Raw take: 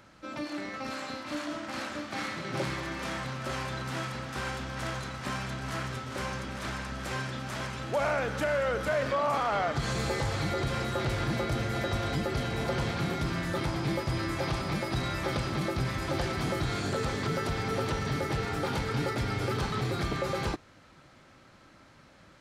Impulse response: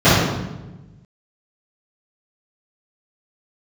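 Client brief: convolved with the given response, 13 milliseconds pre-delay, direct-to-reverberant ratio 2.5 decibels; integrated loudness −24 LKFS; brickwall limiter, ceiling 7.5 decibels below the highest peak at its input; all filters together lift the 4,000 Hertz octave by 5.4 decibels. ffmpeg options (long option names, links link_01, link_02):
-filter_complex "[0:a]equalizer=frequency=4000:width_type=o:gain=6.5,alimiter=level_in=1.5dB:limit=-24dB:level=0:latency=1,volume=-1.5dB,asplit=2[link_01][link_02];[1:a]atrim=start_sample=2205,adelay=13[link_03];[link_02][link_03]afir=irnorm=-1:irlink=0,volume=-31.5dB[link_04];[link_01][link_04]amix=inputs=2:normalize=0,volume=5dB"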